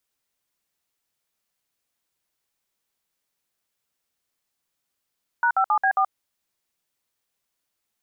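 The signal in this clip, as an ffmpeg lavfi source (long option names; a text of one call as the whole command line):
ffmpeg -f lavfi -i "aevalsrc='0.106*clip(min(mod(t,0.135),0.078-mod(t,0.135))/0.002,0,1)*(eq(floor(t/0.135),0)*(sin(2*PI*941*mod(t,0.135))+sin(2*PI*1477*mod(t,0.135)))+eq(floor(t/0.135),1)*(sin(2*PI*770*mod(t,0.135))+sin(2*PI*1336*mod(t,0.135)))+eq(floor(t/0.135),2)*(sin(2*PI*852*mod(t,0.135))+sin(2*PI*1209*mod(t,0.135)))+eq(floor(t/0.135),3)*(sin(2*PI*770*mod(t,0.135))+sin(2*PI*1633*mod(t,0.135)))+eq(floor(t/0.135),4)*(sin(2*PI*770*mod(t,0.135))+sin(2*PI*1209*mod(t,0.135))))':duration=0.675:sample_rate=44100" out.wav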